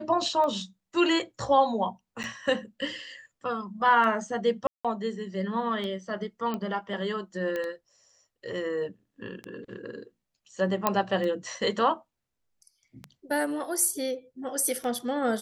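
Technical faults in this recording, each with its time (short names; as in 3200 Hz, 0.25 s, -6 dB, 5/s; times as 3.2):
tick 33 1/3 rpm -22 dBFS
2.23–2.24 gap 8.7 ms
4.67–4.85 gap 0.176 s
6.54 pop -19 dBFS
7.56 pop -19 dBFS
10.87 pop -8 dBFS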